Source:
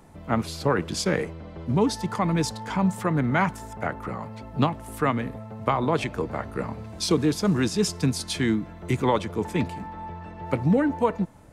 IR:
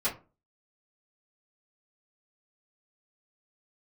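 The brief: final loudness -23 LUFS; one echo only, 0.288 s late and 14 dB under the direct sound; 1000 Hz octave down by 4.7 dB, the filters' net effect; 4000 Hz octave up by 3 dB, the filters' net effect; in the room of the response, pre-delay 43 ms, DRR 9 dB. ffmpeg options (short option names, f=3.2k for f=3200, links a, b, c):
-filter_complex "[0:a]equalizer=f=1k:t=o:g=-6,equalizer=f=4k:t=o:g=4,aecho=1:1:288:0.2,asplit=2[a][b];[1:a]atrim=start_sample=2205,adelay=43[c];[b][c]afir=irnorm=-1:irlink=0,volume=-16.5dB[d];[a][d]amix=inputs=2:normalize=0,volume=3dB"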